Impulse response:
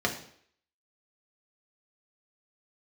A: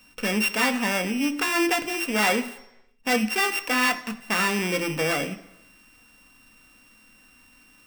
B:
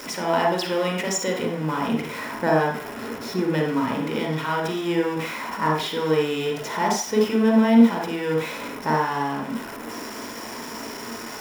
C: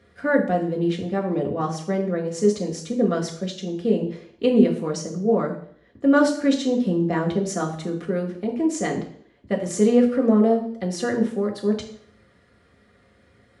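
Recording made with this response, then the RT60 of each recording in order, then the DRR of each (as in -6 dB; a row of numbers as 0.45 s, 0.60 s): C; 0.90 s, 0.40 s, 0.60 s; 6.0 dB, 0.0 dB, 0.0 dB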